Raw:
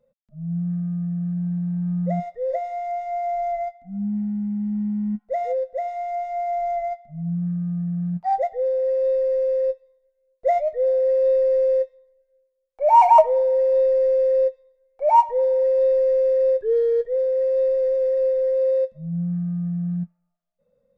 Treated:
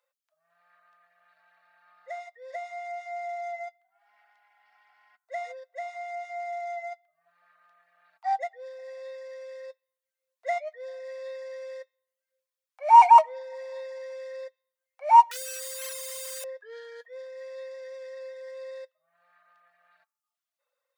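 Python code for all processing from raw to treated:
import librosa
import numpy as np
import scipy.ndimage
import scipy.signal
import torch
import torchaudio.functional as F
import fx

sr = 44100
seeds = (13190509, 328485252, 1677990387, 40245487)

y = fx.chain(x, sr, fx.peak_eq(hz=140.0, db=-3.0, octaves=0.38),
    fx.fixed_phaser(hz=2100.0, stages=4),
    fx.quant_dither(seeds[0], bits=6, dither='none'), at=(15.31, 16.44))
y = scipy.signal.sosfilt(scipy.signal.cheby2(4, 70, 220.0, 'highpass', fs=sr, output='sos'), y)
y = fx.dereverb_blind(y, sr, rt60_s=0.54)
y = F.gain(torch.from_numpy(y), 4.5).numpy()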